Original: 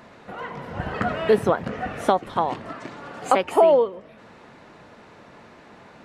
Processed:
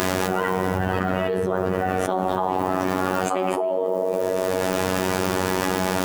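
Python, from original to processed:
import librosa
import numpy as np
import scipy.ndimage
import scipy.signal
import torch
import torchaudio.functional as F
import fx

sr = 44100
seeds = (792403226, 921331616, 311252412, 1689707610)

y = fx.echo_tape(x, sr, ms=111, feedback_pct=76, wet_db=-12.5, lp_hz=1200.0, drive_db=6.0, wow_cents=17)
y = fx.rev_fdn(y, sr, rt60_s=1.3, lf_ratio=1.1, hf_ratio=0.5, size_ms=48.0, drr_db=4.0)
y = fx.quant_dither(y, sr, seeds[0], bits=8, dither='none')
y = fx.peak_eq(y, sr, hz=330.0, db=4.5, octaves=1.7)
y = fx.robotise(y, sr, hz=93.3)
y = fx.peak_eq(y, sr, hz=4100.0, db=-3.5, octaves=0.23)
y = fx.notch(y, sr, hz=2100.0, q=14.0)
y = fx.env_flatten(y, sr, amount_pct=100)
y = y * 10.0 ** (-14.5 / 20.0)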